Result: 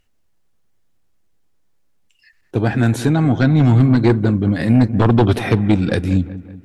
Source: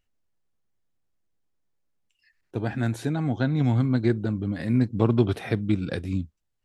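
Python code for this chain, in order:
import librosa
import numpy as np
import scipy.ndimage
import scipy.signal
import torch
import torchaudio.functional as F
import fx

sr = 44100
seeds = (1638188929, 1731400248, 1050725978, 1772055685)

y = fx.fold_sine(x, sr, drive_db=8, ceiling_db=-6.5)
y = fx.echo_wet_lowpass(y, sr, ms=189, feedback_pct=50, hz=2000.0, wet_db=-15.0)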